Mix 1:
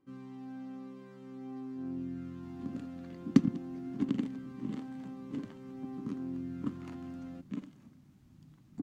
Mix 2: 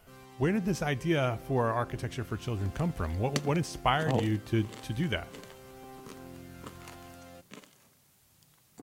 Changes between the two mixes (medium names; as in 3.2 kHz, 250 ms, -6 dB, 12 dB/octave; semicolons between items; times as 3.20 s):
speech: unmuted; second sound: add bass shelf 200 Hz -9 dB; reverb: on; master: remove FFT filter 100 Hz 0 dB, 280 Hz +13 dB, 450 Hz -6 dB, 1.2 kHz -4 dB, 6.6 kHz -13 dB, 10 kHz -20 dB